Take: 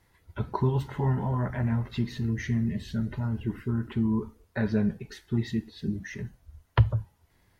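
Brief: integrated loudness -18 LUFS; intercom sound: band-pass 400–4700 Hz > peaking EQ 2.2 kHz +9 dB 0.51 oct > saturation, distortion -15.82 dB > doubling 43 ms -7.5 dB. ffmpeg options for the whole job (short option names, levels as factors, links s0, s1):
-filter_complex "[0:a]highpass=400,lowpass=4700,equalizer=f=2200:t=o:w=0.51:g=9,asoftclip=threshold=0.0891,asplit=2[s0][s1];[s1]adelay=43,volume=0.422[s2];[s0][s2]amix=inputs=2:normalize=0,volume=9.44"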